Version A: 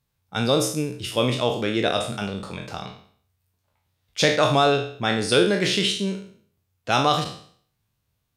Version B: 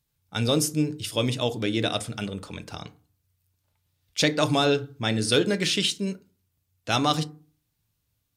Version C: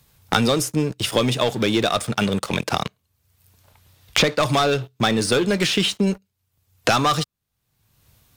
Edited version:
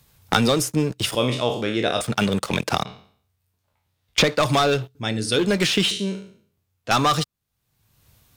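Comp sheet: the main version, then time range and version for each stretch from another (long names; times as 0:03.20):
C
0:01.15–0:02.01: punch in from A
0:02.85–0:04.18: punch in from A
0:04.95–0:05.39: punch in from B
0:05.91–0:06.91: punch in from A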